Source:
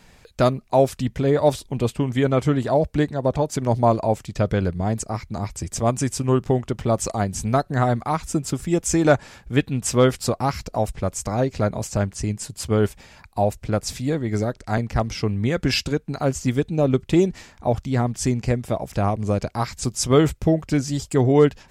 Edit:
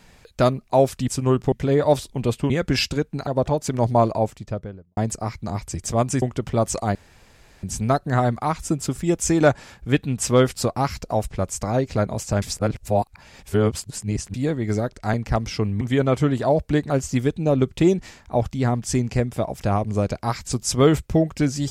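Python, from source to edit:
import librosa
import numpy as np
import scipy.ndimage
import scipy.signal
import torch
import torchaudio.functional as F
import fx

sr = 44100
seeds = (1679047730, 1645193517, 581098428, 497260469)

y = fx.studio_fade_out(x, sr, start_s=3.93, length_s=0.92)
y = fx.edit(y, sr, fx.swap(start_s=2.06, length_s=1.09, other_s=15.45, other_length_s=0.77),
    fx.move(start_s=6.1, length_s=0.44, to_s=1.08),
    fx.insert_room_tone(at_s=7.27, length_s=0.68),
    fx.reverse_span(start_s=12.06, length_s=1.92), tone=tone)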